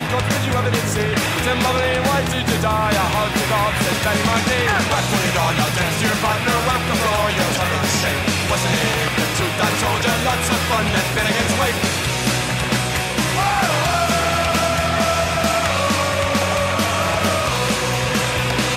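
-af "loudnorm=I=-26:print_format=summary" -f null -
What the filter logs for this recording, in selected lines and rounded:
Input Integrated:    -18.0 LUFS
Input True Peak:      -3.4 dBTP
Input LRA:             0.7 LU
Input Threshold:     -28.0 LUFS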